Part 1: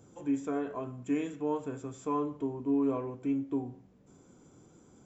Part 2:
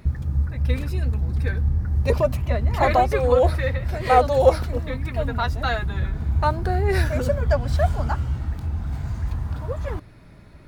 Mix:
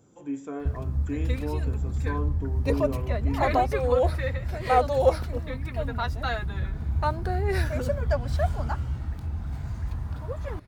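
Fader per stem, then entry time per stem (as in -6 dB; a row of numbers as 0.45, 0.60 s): -2.0, -5.0 dB; 0.00, 0.60 s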